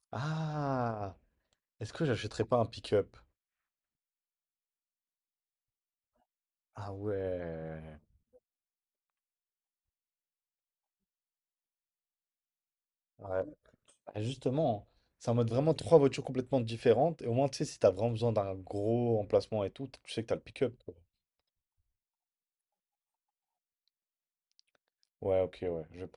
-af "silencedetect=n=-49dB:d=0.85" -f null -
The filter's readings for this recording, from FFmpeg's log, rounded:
silence_start: 3.17
silence_end: 6.77 | silence_duration: 3.60
silence_start: 7.97
silence_end: 13.20 | silence_duration: 5.23
silence_start: 20.92
silence_end: 24.59 | silence_duration: 3.67